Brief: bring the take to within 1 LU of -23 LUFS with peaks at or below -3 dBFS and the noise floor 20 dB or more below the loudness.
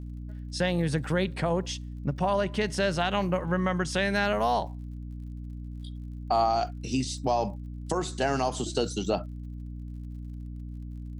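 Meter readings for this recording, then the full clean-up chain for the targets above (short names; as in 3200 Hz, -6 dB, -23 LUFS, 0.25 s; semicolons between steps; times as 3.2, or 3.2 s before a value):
ticks 53/s; hum 60 Hz; harmonics up to 300 Hz; hum level -36 dBFS; loudness -28.5 LUFS; peak -13.5 dBFS; loudness target -23.0 LUFS
-> de-click; de-hum 60 Hz, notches 5; gain +5.5 dB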